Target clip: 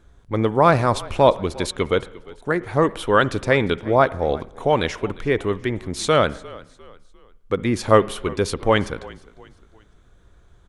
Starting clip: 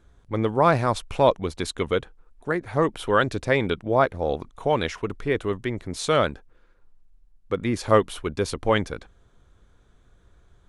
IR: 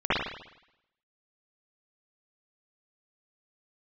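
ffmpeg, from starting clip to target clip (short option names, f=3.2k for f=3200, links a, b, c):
-filter_complex "[0:a]asplit=4[a][b][c][d];[b]adelay=351,afreqshift=-38,volume=-21dB[e];[c]adelay=702,afreqshift=-76,volume=-29.2dB[f];[d]adelay=1053,afreqshift=-114,volume=-37.4dB[g];[a][e][f][g]amix=inputs=4:normalize=0,asplit=2[h][i];[1:a]atrim=start_sample=2205[j];[i][j]afir=irnorm=-1:irlink=0,volume=-34.5dB[k];[h][k]amix=inputs=2:normalize=0,volume=3.5dB"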